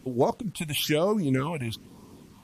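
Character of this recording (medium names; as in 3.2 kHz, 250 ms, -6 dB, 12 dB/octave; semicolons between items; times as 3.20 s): phasing stages 6, 1.1 Hz, lowest notch 340–2900 Hz; a quantiser's noise floor 10-bit, dither none; MP3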